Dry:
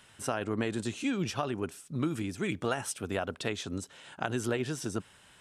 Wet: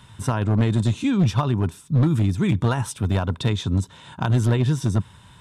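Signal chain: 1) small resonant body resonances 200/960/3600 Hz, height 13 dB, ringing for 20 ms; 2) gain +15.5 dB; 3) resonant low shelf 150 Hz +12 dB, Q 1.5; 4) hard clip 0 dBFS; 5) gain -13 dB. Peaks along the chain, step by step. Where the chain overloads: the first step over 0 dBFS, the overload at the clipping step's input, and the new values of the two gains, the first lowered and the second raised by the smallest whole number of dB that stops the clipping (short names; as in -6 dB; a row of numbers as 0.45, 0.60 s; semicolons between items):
-9.0, +6.5, +6.0, 0.0, -13.0 dBFS; step 2, 6.0 dB; step 2 +9.5 dB, step 5 -7 dB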